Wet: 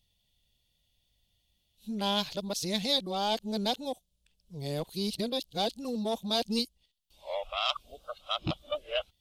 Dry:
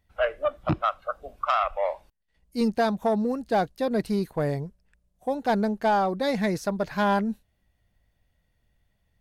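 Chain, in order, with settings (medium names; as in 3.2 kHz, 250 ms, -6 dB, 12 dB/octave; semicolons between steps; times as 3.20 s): reverse the whole clip; resonant high shelf 2.4 kHz +11.5 dB, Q 3; trim -7.5 dB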